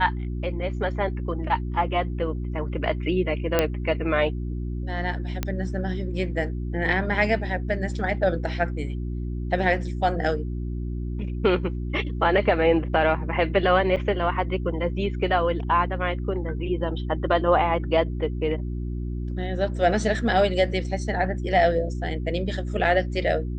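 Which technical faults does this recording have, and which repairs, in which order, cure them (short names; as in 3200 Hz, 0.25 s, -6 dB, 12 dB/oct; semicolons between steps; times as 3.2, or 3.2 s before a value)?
hum 60 Hz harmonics 6 -29 dBFS
3.59 pop -6 dBFS
5.43 pop -11 dBFS
13.96–13.97 gap 7.2 ms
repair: de-click; de-hum 60 Hz, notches 6; interpolate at 13.96, 7.2 ms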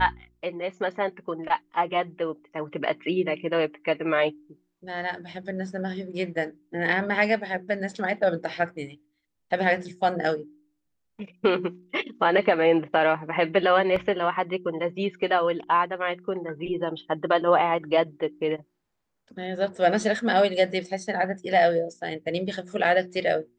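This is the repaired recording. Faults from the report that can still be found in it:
none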